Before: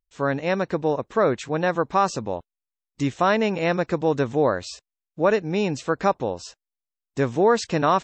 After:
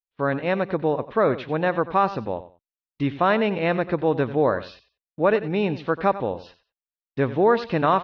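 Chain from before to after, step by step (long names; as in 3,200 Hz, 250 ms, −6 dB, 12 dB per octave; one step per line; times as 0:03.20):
noise gate −46 dBFS, range −28 dB
inverse Chebyshev low-pass filter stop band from 7,100 Hz, stop band 40 dB
on a send: repeating echo 92 ms, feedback 21%, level −14.5 dB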